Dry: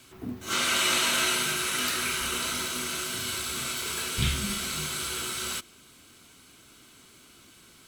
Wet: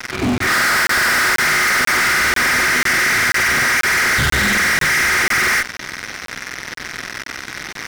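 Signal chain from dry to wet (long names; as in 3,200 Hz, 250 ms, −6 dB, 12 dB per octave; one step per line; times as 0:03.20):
hearing-aid frequency compression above 1,200 Hz 4 to 1
fuzz pedal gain 47 dB, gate −47 dBFS
regular buffer underruns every 0.49 s, samples 1,024, zero, from 0:00.38
level −1.5 dB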